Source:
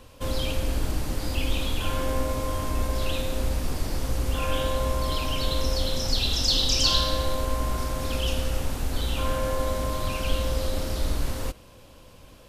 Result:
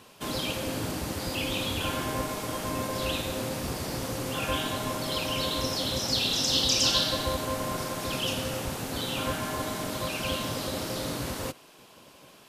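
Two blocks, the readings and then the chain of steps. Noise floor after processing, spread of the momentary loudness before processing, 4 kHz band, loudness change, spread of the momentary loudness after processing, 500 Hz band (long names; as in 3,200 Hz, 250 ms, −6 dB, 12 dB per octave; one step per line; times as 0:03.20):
−54 dBFS, 9 LU, −0.5 dB, −1.5 dB, 9 LU, −2.0 dB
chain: gate on every frequency bin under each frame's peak −10 dB weak
level +1.5 dB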